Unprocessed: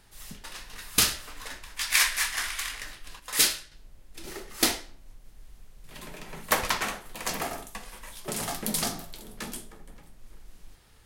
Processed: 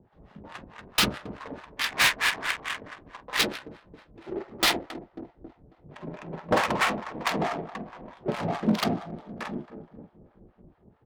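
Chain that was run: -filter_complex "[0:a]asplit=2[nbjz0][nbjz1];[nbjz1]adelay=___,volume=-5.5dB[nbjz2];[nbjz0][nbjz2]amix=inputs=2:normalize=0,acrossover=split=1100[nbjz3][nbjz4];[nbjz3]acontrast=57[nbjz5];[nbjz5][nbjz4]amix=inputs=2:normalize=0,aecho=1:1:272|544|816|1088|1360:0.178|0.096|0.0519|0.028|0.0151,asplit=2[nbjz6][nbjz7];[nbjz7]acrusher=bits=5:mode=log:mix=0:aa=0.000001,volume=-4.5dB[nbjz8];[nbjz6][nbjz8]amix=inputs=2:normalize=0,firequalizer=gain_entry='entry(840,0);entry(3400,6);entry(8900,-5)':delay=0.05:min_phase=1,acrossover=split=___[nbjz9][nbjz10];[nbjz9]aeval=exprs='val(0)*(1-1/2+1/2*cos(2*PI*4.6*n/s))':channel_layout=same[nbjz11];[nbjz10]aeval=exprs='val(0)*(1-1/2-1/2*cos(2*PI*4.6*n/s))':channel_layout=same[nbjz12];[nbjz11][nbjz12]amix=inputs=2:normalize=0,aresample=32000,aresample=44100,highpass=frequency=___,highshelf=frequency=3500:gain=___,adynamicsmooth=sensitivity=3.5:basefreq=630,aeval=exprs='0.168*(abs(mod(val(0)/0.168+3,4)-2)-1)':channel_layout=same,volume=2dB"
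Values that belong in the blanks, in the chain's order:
48, 740, 120, -7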